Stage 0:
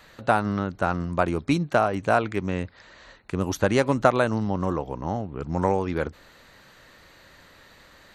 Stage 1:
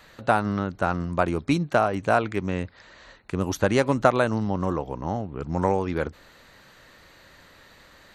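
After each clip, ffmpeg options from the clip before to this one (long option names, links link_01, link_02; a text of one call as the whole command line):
ffmpeg -i in.wav -af anull out.wav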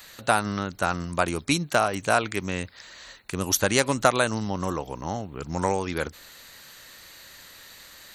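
ffmpeg -i in.wav -af "crystalizer=i=6.5:c=0,volume=-3.5dB" out.wav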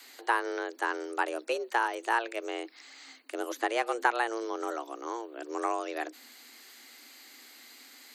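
ffmpeg -i in.wav -filter_complex "[0:a]afreqshift=230,acrossover=split=2700[link_01][link_02];[link_02]acompressor=threshold=-40dB:ratio=4:attack=1:release=60[link_03];[link_01][link_03]amix=inputs=2:normalize=0,asubboost=boost=3:cutoff=230,volume=-5dB" out.wav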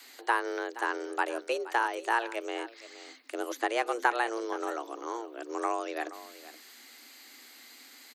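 ffmpeg -i in.wav -af "aecho=1:1:473:0.158" out.wav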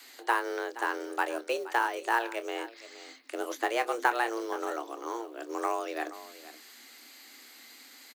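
ffmpeg -i in.wav -filter_complex "[0:a]acrusher=bits=6:mode=log:mix=0:aa=0.000001,asplit=2[link_01][link_02];[link_02]adelay=26,volume=-12dB[link_03];[link_01][link_03]amix=inputs=2:normalize=0" out.wav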